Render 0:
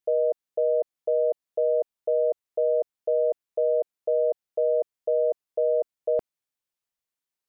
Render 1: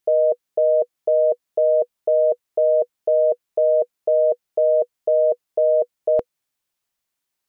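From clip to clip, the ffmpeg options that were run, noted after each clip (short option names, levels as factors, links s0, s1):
-af "bandreject=f=490:w=12,volume=2.66"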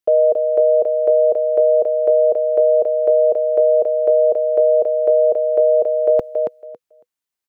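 -filter_complex "[0:a]agate=range=0.316:threshold=0.00891:ratio=16:detection=peak,acrossover=split=130[s0][s1];[s0]acrusher=bits=3:mode=log:mix=0:aa=0.000001[s2];[s1]aecho=1:1:277|554|831:0.562|0.09|0.0144[s3];[s2][s3]amix=inputs=2:normalize=0,volume=1.5"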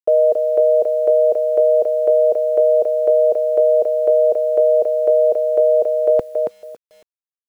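-af "acrusher=bits=8:mix=0:aa=0.000001"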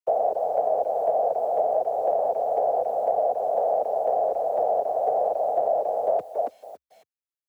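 -filter_complex "[0:a]afftfilt=real='hypot(re,im)*cos(2*PI*random(0))':imag='hypot(re,im)*sin(2*PI*random(1))':win_size=512:overlap=0.75,acrossover=split=200|630[s0][s1][s2];[s0]acompressor=threshold=0.00282:ratio=4[s3];[s1]acompressor=threshold=0.0562:ratio=4[s4];[s2]acompressor=threshold=0.0501:ratio=4[s5];[s3][s4][s5]amix=inputs=3:normalize=0,afreqshift=63"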